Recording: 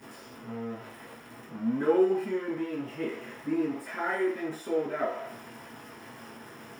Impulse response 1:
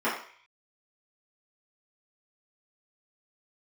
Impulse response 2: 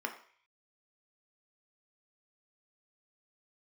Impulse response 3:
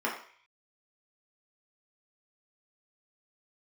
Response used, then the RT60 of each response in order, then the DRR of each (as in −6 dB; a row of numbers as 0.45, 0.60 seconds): 1; 0.50, 0.50, 0.50 seconds; −11.5, 3.0, −4.5 decibels